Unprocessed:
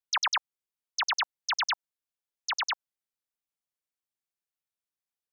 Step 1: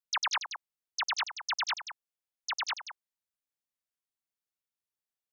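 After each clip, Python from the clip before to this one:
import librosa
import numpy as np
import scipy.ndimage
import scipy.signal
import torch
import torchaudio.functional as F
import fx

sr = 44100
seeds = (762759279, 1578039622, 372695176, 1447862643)

y = x + 10.0 ** (-10.0 / 20.0) * np.pad(x, (int(182 * sr / 1000.0), 0))[:len(x)]
y = y * 10.0 ** (-3.5 / 20.0)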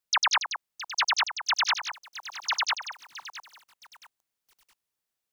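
y = fx.echo_crushed(x, sr, ms=667, feedback_pct=35, bits=9, wet_db=-14.0)
y = y * 10.0 ** (7.0 / 20.0)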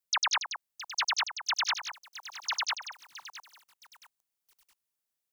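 y = fx.high_shelf(x, sr, hz=6100.0, db=6.5)
y = y * 10.0 ** (-5.5 / 20.0)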